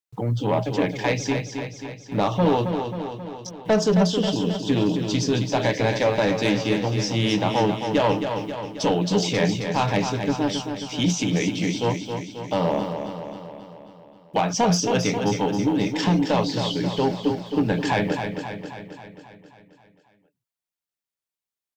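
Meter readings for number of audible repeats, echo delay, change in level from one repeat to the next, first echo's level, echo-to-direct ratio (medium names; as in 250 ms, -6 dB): 7, 268 ms, -4.5 dB, -7.0 dB, -5.0 dB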